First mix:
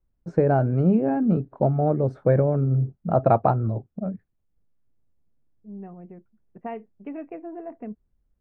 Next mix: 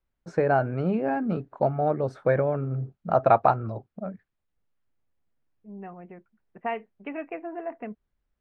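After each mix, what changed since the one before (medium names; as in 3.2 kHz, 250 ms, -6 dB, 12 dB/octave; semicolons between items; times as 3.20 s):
second voice +4.0 dB; master: add tilt shelf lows -9 dB, about 670 Hz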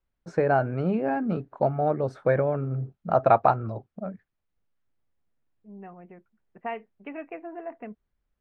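second voice -3.0 dB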